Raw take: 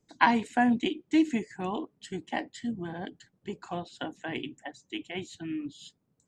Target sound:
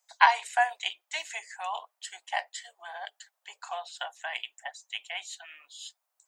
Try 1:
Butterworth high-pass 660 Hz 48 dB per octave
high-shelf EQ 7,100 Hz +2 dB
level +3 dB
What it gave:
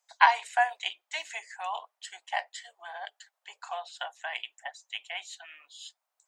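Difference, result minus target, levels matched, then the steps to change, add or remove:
8,000 Hz band −3.5 dB
change: high-shelf EQ 7,100 Hz +9.5 dB

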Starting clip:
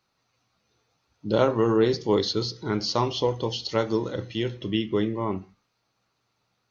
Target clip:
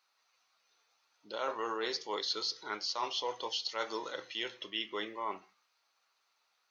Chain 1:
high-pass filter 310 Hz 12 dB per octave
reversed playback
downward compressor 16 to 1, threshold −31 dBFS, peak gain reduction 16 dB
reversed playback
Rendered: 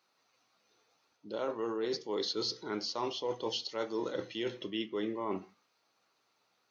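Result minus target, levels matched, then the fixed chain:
250 Hz band +9.0 dB
high-pass filter 890 Hz 12 dB per octave
reversed playback
downward compressor 16 to 1, threshold −31 dBFS, peak gain reduction 10.5 dB
reversed playback

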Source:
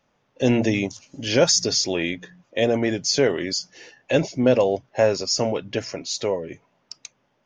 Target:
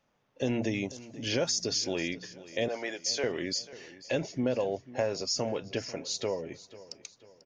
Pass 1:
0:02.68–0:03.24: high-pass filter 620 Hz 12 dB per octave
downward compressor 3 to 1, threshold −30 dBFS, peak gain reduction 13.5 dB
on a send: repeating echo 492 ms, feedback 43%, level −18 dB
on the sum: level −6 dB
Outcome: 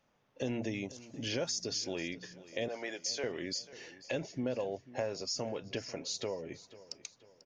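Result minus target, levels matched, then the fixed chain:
downward compressor: peak gain reduction +6 dB
0:02.68–0:03.24: high-pass filter 620 Hz 12 dB per octave
downward compressor 3 to 1, threshold −21 dBFS, peak gain reduction 7.5 dB
on a send: repeating echo 492 ms, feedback 43%, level −18 dB
on the sum: level −6 dB

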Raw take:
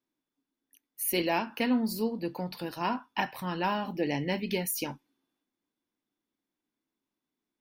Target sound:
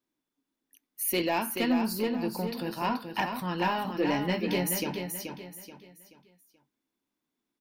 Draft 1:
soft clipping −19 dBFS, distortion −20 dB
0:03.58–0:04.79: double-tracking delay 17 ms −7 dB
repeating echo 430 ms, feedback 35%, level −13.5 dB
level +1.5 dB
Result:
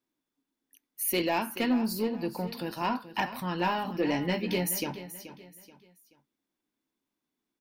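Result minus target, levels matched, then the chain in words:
echo-to-direct −7 dB
soft clipping −19 dBFS, distortion −20 dB
0:03.58–0:04.79: double-tracking delay 17 ms −7 dB
repeating echo 430 ms, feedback 35%, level −6.5 dB
level +1.5 dB

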